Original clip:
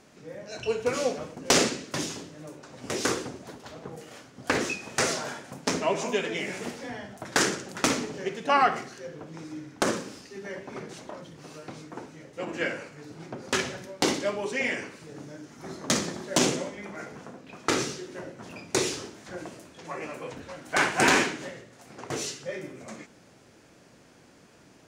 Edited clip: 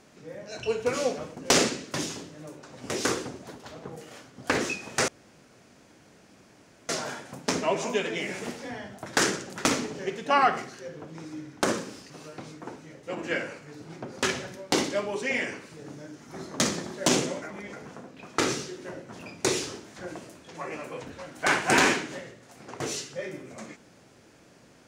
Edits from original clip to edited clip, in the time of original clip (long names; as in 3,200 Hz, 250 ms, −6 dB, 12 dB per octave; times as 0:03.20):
0:05.08: splice in room tone 1.81 s
0:10.29–0:11.40: remove
0:16.72–0:17.03: reverse